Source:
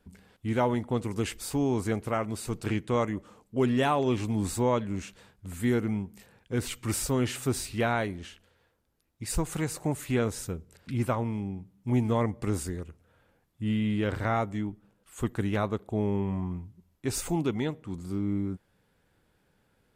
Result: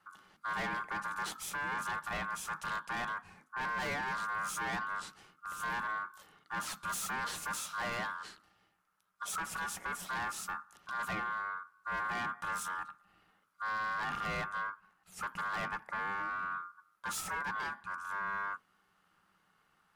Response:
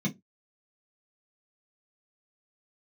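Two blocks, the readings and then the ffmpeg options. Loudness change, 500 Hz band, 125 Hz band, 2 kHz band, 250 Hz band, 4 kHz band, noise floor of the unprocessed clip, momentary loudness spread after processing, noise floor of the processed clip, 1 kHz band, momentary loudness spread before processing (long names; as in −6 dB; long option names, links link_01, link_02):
−7.5 dB, −18.0 dB, −21.5 dB, +4.0 dB, −21.5 dB, −4.0 dB, −70 dBFS, 8 LU, −74 dBFS, −0.5 dB, 11 LU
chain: -filter_complex "[0:a]asoftclip=type=hard:threshold=-31.5dB,aeval=exprs='val(0)*sin(2*PI*1300*n/s)':channel_layout=same,asplit=2[link_01][link_02];[1:a]atrim=start_sample=2205[link_03];[link_02][link_03]afir=irnorm=-1:irlink=0,volume=-17dB[link_04];[link_01][link_04]amix=inputs=2:normalize=0"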